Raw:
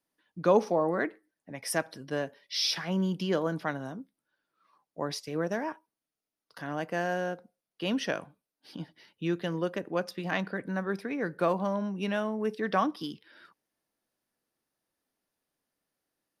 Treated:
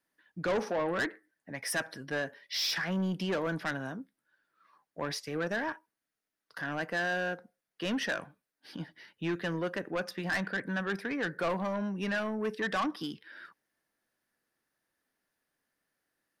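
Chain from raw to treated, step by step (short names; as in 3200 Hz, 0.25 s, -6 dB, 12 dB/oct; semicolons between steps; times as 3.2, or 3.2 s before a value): bell 1700 Hz +9 dB 0.67 oct; soft clip -26 dBFS, distortion -8 dB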